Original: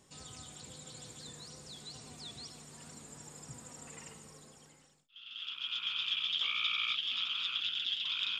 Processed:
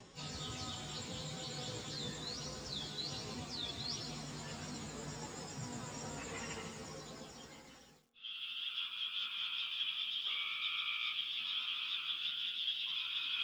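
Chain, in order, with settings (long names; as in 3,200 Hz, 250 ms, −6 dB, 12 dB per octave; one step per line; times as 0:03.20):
low-pass filter 6,000 Hz 24 dB per octave
hum removal 66.81 Hz, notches 7
noise gate with hold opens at −59 dBFS
reversed playback
downward compressor 5 to 1, threshold −46 dBFS, peak gain reduction 15.5 dB
reversed playback
time stretch by phase vocoder 1.6×
on a send at −19.5 dB: convolution reverb RT60 2.2 s, pre-delay 3 ms
on the sum: feedback echo at a low word length 150 ms, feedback 35%, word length 12 bits, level −10 dB
level +10.5 dB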